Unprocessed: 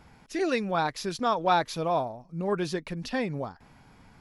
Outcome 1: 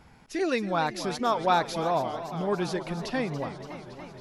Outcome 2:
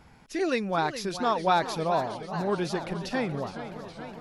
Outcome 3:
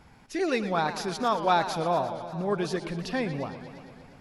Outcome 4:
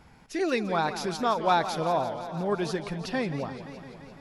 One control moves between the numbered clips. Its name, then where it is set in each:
modulated delay, time: 280 ms, 420 ms, 116 ms, 171 ms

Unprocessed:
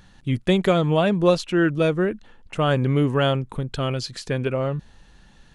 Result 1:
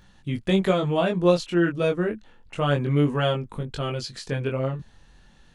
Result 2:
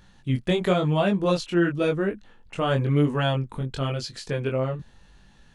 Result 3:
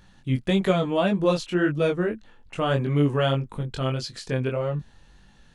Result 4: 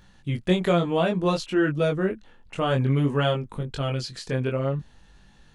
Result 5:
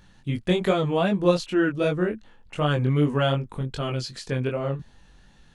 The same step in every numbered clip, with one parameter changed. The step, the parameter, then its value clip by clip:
chorus, rate: 0.29 Hz, 0.96 Hz, 1.7 Hz, 0.58 Hz, 2.6 Hz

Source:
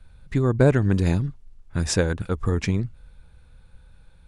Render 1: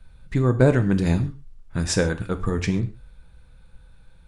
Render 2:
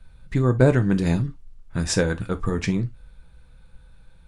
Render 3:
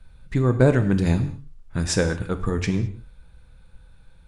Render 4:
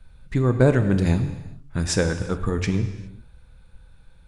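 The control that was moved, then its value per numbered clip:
gated-style reverb, gate: 160 ms, 90 ms, 240 ms, 440 ms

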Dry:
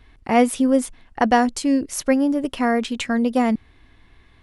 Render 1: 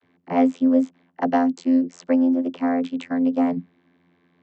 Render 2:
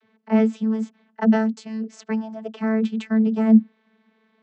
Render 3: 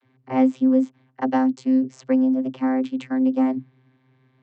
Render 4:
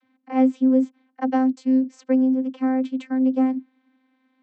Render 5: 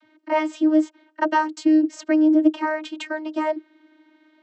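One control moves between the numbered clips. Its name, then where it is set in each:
vocoder, frequency: 87 Hz, 220 Hz, 130 Hz, 260 Hz, 310 Hz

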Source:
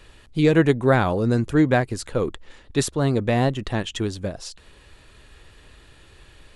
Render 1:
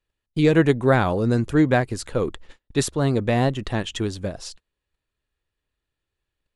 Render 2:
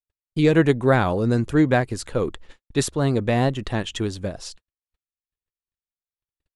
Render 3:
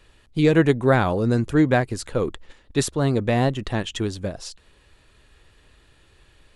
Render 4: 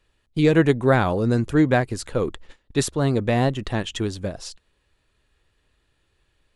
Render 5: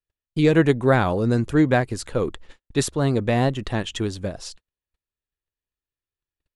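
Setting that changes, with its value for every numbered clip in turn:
gate, range: -33 dB, -60 dB, -6 dB, -18 dB, -46 dB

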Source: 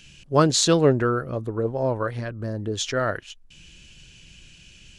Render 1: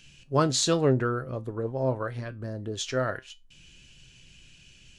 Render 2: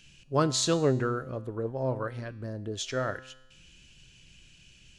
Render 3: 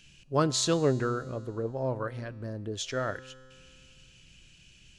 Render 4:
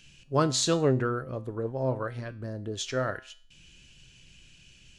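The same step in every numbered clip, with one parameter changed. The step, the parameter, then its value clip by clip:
feedback comb, decay: 0.2 s, 0.95 s, 2.2 s, 0.44 s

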